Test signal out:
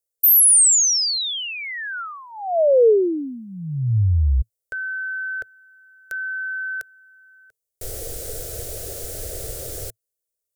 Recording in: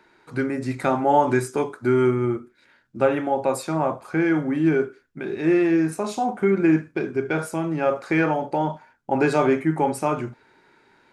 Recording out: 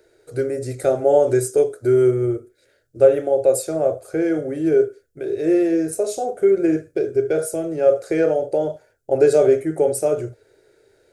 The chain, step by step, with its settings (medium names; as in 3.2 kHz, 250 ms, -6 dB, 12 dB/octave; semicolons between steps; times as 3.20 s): FFT filter 110 Hz 0 dB, 210 Hz -21 dB, 450 Hz +5 dB, 650 Hz 0 dB, 970 Hz -26 dB, 1.4 kHz -12 dB, 2.5 kHz -14 dB, 8.6 kHz +4 dB; trim +5.5 dB